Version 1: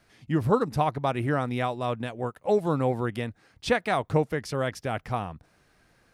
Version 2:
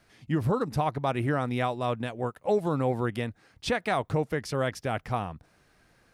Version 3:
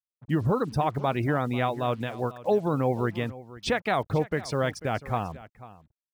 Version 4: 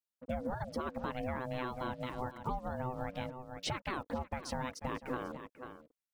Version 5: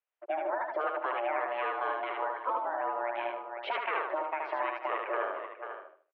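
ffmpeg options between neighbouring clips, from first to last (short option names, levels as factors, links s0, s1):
-af "alimiter=limit=0.15:level=0:latency=1:release=79"
-af "afftfilt=real='re*gte(hypot(re,im),0.00708)':imag='im*gte(hypot(re,im),0.00708)':win_size=1024:overlap=0.75,acrusher=bits=8:mix=0:aa=0.5,aecho=1:1:493:0.133,volume=1.19"
-af "acompressor=threshold=0.0224:ratio=6,aeval=exprs='val(0)*sin(2*PI*380*n/s)':c=same,volume=1.12"
-filter_complex "[0:a]asplit=2[s0][s1];[s1]aecho=0:1:76|152|228|304:0.708|0.212|0.0637|0.0191[s2];[s0][s2]amix=inputs=2:normalize=0,highpass=f=360:t=q:w=0.5412,highpass=f=360:t=q:w=1.307,lowpass=f=2700:t=q:w=0.5176,lowpass=f=2700:t=q:w=0.7071,lowpass=f=2700:t=q:w=1.932,afreqshift=90,volume=2.11"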